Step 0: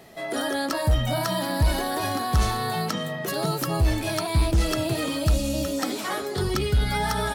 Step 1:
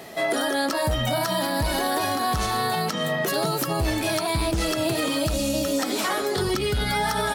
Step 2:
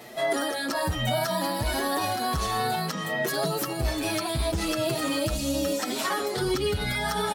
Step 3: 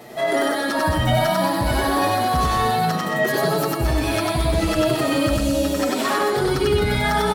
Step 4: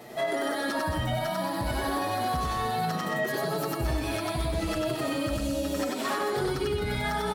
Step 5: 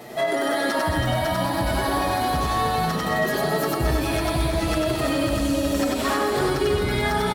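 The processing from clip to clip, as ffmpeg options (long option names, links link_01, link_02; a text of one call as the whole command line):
ffmpeg -i in.wav -af "lowshelf=frequency=120:gain=-12,alimiter=limit=-24dB:level=0:latency=1:release=228,volume=9dB" out.wav
ffmpeg -i in.wav -filter_complex "[0:a]asplit=2[link_01][link_02];[link_02]adelay=6.4,afreqshift=1.9[link_03];[link_01][link_03]amix=inputs=2:normalize=1" out.wav
ffmpeg -i in.wav -filter_complex "[0:a]asplit=2[link_01][link_02];[link_02]adynamicsmooth=sensitivity=4.5:basefreq=1500,volume=-2dB[link_03];[link_01][link_03]amix=inputs=2:normalize=0,aecho=1:1:96.21|221.6:0.891|0.398" out.wav
ffmpeg -i in.wav -af "alimiter=limit=-15dB:level=0:latency=1:release=372,volume=-4.5dB" out.wav
ffmpeg -i in.wav -af "aecho=1:1:326|652|978|1304|1630|1956:0.422|0.219|0.114|0.0593|0.0308|0.016,volume=5.5dB" out.wav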